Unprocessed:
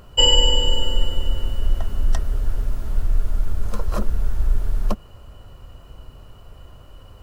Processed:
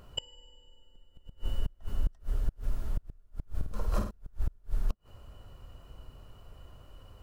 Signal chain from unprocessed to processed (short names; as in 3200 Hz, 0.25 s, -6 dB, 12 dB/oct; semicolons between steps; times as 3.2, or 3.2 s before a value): flipped gate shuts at -10 dBFS, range -32 dB; 3.53–4.11 flutter echo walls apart 8.8 m, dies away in 0.51 s; gain -8 dB